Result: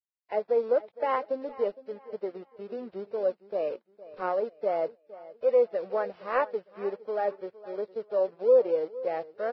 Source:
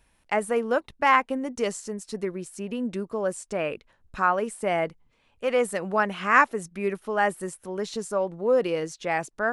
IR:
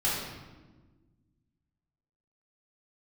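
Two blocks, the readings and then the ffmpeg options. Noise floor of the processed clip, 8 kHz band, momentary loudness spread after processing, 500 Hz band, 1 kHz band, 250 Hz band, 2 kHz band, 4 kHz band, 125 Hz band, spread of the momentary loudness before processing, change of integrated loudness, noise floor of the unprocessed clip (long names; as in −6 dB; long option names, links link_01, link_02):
−71 dBFS, below −35 dB, 15 LU, +0.5 dB, −8.5 dB, −11.5 dB, −15.5 dB, below −10 dB, below −15 dB, 12 LU, −3.0 dB, −66 dBFS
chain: -af "aeval=exprs='if(lt(val(0),0),0.447*val(0),val(0))':channel_layout=same,bandpass=frequency=520:width_type=q:width=2.8:csg=0,aresample=11025,aeval=exprs='sgn(val(0))*max(abs(val(0))-0.00126,0)':channel_layout=same,aresample=44100,aecho=1:1:462|924|1386:0.126|0.0415|0.0137,volume=5dB" -ar 16000 -c:a libvorbis -b:a 16k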